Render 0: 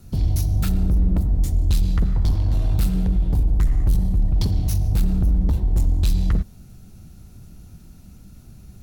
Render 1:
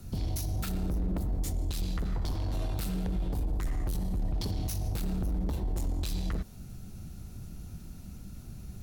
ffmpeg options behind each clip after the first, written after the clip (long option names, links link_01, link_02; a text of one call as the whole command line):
ffmpeg -i in.wav -filter_complex "[0:a]acrossover=split=270[link_01][link_02];[link_01]acompressor=threshold=-27dB:ratio=6[link_03];[link_03][link_02]amix=inputs=2:normalize=0,alimiter=level_in=0.5dB:limit=-24dB:level=0:latency=1:release=46,volume=-0.5dB" out.wav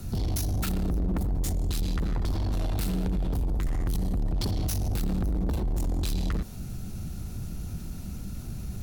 ffmpeg -i in.wav -af "asoftclip=type=tanh:threshold=-32dB,volume=8.5dB" out.wav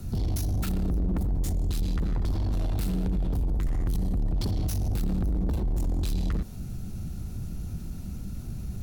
ffmpeg -i in.wav -af "lowshelf=frequency=470:gain=5,volume=-4dB" out.wav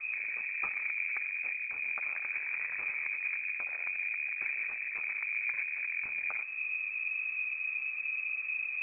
ffmpeg -i in.wav -af "afftfilt=real='re*lt(hypot(re,im),0.282)':imag='im*lt(hypot(re,im),0.282)':win_size=1024:overlap=0.75,lowpass=frequency=2200:width_type=q:width=0.5098,lowpass=frequency=2200:width_type=q:width=0.6013,lowpass=frequency=2200:width_type=q:width=0.9,lowpass=frequency=2200:width_type=q:width=2.563,afreqshift=-2600" out.wav